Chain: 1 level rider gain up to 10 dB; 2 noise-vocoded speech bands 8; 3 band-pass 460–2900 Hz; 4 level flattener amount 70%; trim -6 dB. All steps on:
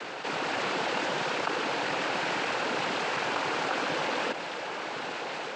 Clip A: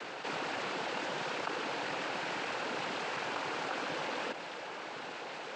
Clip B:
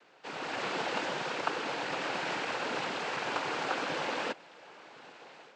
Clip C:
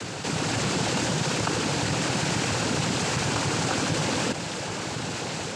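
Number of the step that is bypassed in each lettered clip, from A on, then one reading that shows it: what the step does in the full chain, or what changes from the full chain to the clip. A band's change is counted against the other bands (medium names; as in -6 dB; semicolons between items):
1, loudness change -7.0 LU; 4, crest factor change +4.5 dB; 3, 125 Hz band +15.5 dB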